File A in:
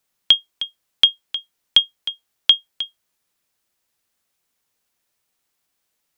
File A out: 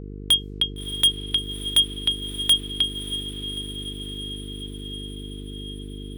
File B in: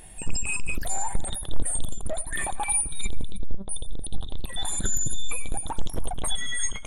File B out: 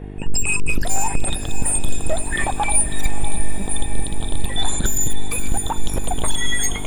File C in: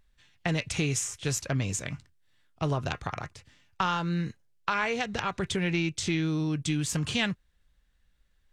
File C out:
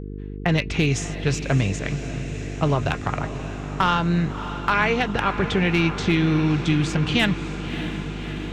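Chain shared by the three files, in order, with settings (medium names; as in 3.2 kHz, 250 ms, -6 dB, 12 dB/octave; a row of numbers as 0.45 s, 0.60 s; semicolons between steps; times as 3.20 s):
level-controlled noise filter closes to 1.6 kHz, open at -17.5 dBFS; hard clipper -18.5 dBFS; mains buzz 50 Hz, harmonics 9, -41 dBFS -4 dB/octave; echo that smears into a reverb 620 ms, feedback 72%, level -11.5 dB; normalise loudness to -23 LUFS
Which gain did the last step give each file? +5.0 dB, +8.5 dB, +8.0 dB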